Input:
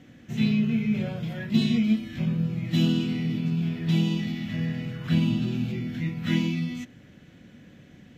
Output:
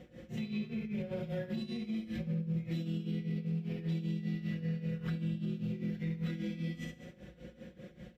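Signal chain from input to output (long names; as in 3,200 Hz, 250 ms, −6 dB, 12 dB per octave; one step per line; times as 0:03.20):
on a send: flutter between parallel walls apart 11.6 metres, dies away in 0.89 s
on the sum: downward compressor 3 to 1, threshold −29 dBFS, peak gain reduction 11 dB
parametric band 500 Hz +13 dB 0.5 octaves
notch filter 6,400 Hz, Q 17
hum removal 147.9 Hz, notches 31
amplitude tremolo 5.1 Hz, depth 83%
brickwall limiter −28.5 dBFS, peak gain reduction 10 dB
parametric band 60 Hz +14.5 dB 0.75 octaves
comb filter 5.6 ms, depth 60%
level −3.5 dB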